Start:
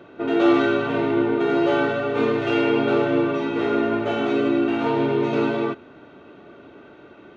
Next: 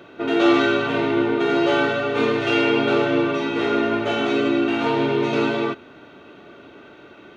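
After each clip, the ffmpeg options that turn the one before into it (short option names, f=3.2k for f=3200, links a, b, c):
-af "highshelf=f=2k:g=9"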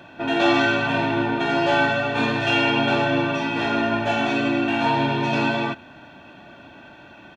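-af "aecho=1:1:1.2:0.74"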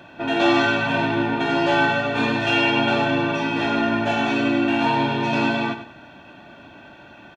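-af "aecho=1:1:97|194|291:0.282|0.0817|0.0237"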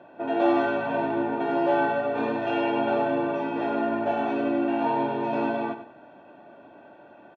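-af "bandpass=f=530:t=q:w=1.2:csg=0"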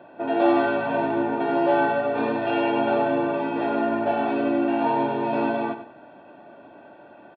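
-af "aresample=11025,aresample=44100,volume=2.5dB"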